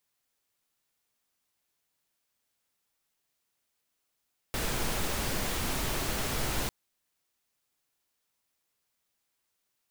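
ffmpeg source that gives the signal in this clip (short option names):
-f lavfi -i "anoisesrc=c=pink:a=0.145:d=2.15:r=44100:seed=1"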